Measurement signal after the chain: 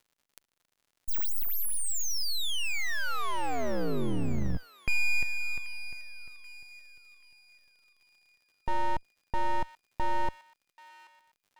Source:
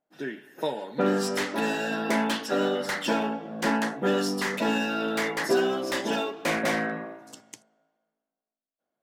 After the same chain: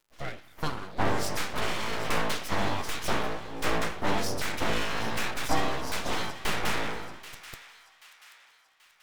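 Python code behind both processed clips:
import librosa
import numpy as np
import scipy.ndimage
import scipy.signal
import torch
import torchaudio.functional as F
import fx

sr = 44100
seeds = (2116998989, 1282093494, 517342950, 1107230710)

y = fx.octave_divider(x, sr, octaves=2, level_db=-5.0)
y = np.abs(y)
y = fx.dmg_crackle(y, sr, seeds[0], per_s=85.0, level_db=-55.0)
y = fx.echo_wet_highpass(y, sr, ms=783, feedback_pct=44, hz=1500.0, wet_db=-13)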